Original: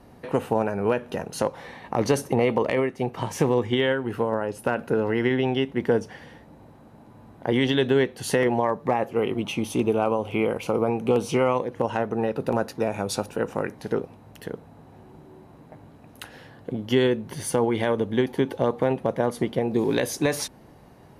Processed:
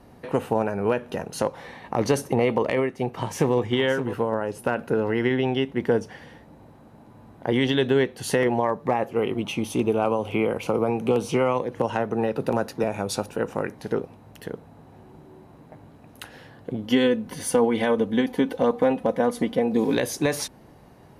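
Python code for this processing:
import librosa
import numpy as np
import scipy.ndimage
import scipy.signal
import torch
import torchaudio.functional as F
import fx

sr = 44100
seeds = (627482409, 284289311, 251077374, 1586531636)

y = fx.echo_throw(x, sr, start_s=2.85, length_s=0.71, ms=570, feedback_pct=10, wet_db=-11.5)
y = fx.band_squash(y, sr, depth_pct=40, at=(10.04, 12.84))
y = fx.comb(y, sr, ms=4.0, depth=0.65, at=(16.83, 19.95))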